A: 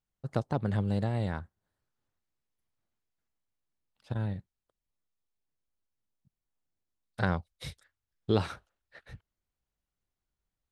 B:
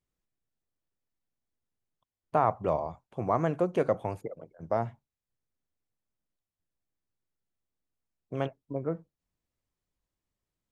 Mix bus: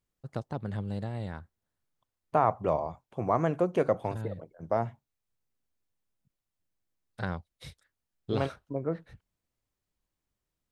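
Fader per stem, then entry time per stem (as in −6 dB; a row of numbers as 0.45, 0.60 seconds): −5.0, +0.5 decibels; 0.00, 0.00 seconds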